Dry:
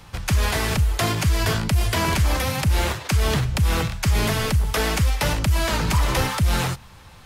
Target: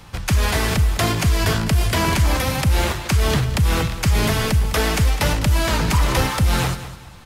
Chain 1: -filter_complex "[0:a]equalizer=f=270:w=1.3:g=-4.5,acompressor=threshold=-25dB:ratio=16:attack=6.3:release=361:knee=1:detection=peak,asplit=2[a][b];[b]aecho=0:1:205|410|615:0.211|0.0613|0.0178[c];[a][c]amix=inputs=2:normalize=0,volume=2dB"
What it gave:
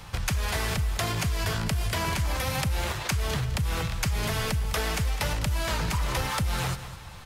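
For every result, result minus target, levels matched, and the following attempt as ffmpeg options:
compressor: peak gain reduction +11.5 dB; 250 Hz band -2.5 dB
-filter_complex "[0:a]equalizer=f=270:w=1.3:g=-4.5,asplit=2[a][b];[b]aecho=0:1:205|410|615:0.211|0.0613|0.0178[c];[a][c]amix=inputs=2:normalize=0,volume=2dB"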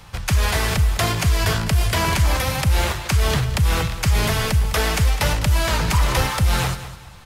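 250 Hz band -3.5 dB
-filter_complex "[0:a]equalizer=f=270:w=1.3:g=2,asplit=2[a][b];[b]aecho=0:1:205|410|615:0.211|0.0613|0.0178[c];[a][c]amix=inputs=2:normalize=0,volume=2dB"

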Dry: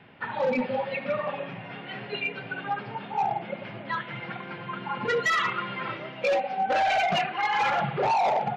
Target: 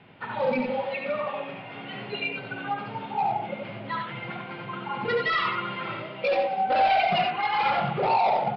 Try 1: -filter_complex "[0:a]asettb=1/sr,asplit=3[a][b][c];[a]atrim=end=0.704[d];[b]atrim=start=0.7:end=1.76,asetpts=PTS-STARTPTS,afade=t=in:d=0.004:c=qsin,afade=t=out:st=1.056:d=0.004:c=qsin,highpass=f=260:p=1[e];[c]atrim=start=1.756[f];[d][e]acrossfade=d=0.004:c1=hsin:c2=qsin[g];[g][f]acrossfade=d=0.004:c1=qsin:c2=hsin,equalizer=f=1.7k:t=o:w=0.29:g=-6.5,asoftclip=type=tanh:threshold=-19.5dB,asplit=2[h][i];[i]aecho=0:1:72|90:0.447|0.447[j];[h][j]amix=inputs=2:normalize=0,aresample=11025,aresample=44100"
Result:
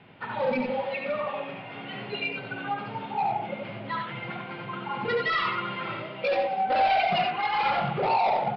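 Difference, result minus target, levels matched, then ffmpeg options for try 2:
soft clip: distortion +16 dB
-filter_complex "[0:a]asettb=1/sr,asplit=3[a][b][c];[a]atrim=end=0.704[d];[b]atrim=start=0.7:end=1.76,asetpts=PTS-STARTPTS,afade=t=in:d=0.004:c=qsin,afade=t=out:st=1.056:d=0.004:c=qsin,highpass=f=260:p=1[e];[c]atrim=start=1.756[f];[d][e]acrossfade=d=0.004:c1=hsin:c2=qsin[g];[g][f]acrossfade=d=0.004:c1=qsin:c2=hsin,equalizer=f=1.7k:t=o:w=0.29:g=-6.5,asoftclip=type=tanh:threshold=-11dB,asplit=2[h][i];[i]aecho=0:1:72|90:0.447|0.447[j];[h][j]amix=inputs=2:normalize=0,aresample=11025,aresample=44100"

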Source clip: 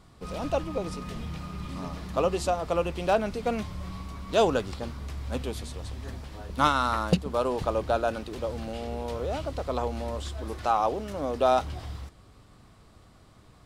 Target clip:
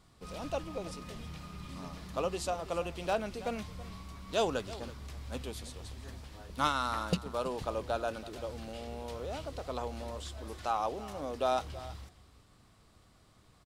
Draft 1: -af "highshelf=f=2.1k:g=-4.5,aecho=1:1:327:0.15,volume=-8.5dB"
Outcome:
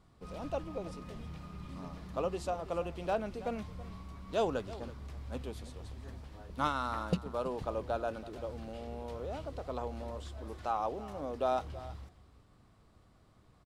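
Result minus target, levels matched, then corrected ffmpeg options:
4000 Hz band -6.0 dB
-af "highshelf=f=2.1k:g=5.5,aecho=1:1:327:0.15,volume=-8.5dB"

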